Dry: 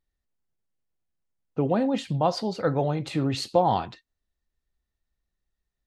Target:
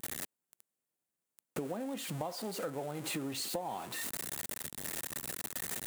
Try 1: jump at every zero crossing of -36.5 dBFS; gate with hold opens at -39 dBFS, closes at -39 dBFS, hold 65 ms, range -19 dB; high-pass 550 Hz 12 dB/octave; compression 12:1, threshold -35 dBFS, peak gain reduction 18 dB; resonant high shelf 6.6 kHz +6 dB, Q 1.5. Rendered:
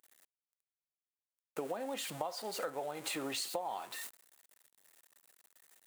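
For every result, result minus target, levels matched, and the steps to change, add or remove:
250 Hz band -4.5 dB; jump at every zero crossing: distortion -6 dB
change: high-pass 210 Hz 12 dB/octave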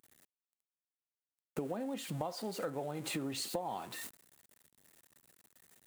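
jump at every zero crossing: distortion -6 dB
change: jump at every zero crossing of -29.5 dBFS

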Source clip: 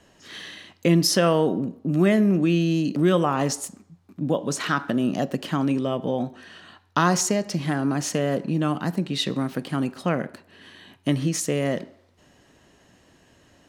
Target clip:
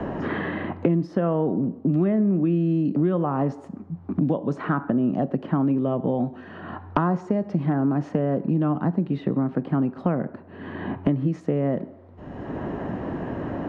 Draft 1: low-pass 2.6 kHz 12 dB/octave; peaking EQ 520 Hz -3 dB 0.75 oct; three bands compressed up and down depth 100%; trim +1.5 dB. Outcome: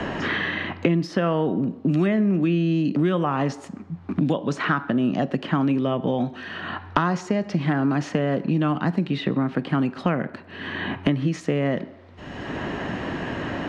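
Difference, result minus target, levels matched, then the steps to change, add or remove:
2 kHz band +8.5 dB
change: low-pass 910 Hz 12 dB/octave

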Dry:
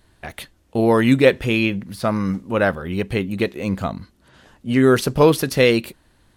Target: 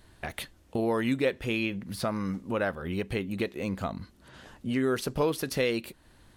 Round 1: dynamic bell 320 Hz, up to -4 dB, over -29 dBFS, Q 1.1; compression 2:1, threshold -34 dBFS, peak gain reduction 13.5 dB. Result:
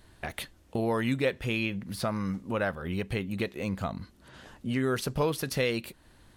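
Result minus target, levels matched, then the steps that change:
125 Hz band +3.0 dB
change: dynamic bell 130 Hz, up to -4 dB, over -29 dBFS, Q 1.1

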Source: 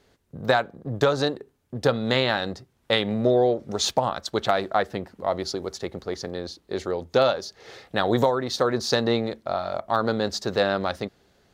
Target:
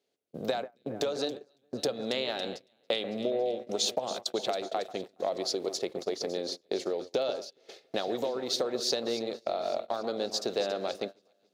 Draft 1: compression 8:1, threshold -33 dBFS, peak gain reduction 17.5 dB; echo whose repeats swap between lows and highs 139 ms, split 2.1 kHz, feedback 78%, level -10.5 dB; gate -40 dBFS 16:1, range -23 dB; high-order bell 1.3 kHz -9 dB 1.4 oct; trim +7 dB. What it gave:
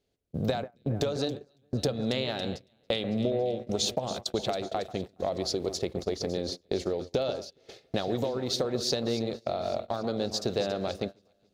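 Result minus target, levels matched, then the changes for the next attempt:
250 Hz band +4.0 dB
add after gate: high-pass 320 Hz 12 dB/octave

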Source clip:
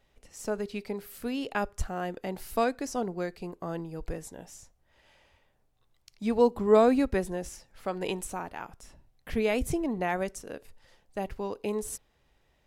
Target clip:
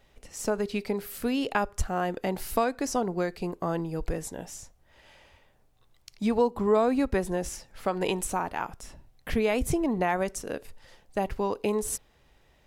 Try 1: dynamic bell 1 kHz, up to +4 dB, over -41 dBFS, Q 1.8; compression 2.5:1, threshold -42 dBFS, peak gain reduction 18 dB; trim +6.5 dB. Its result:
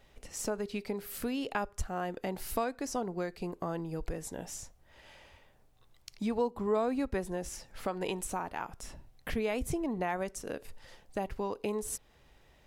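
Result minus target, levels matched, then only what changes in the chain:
compression: peak gain reduction +7 dB
change: compression 2.5:1, threshold -30.5 dBFS, peak gain reduction 11 dB

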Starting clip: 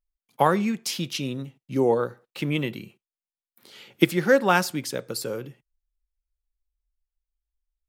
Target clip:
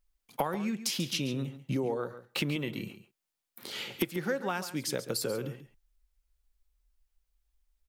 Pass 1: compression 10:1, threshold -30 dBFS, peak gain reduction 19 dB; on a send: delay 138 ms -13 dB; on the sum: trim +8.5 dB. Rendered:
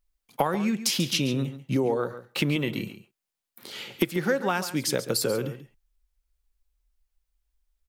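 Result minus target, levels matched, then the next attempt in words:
compression: peak gain reduction -7 dB
compression 10:1, threshold -37.5 dBFS, peak gain reduction 25.5 dB; on a send: delay 138 ms -13 dB; on the sum: trim +8.5 dB

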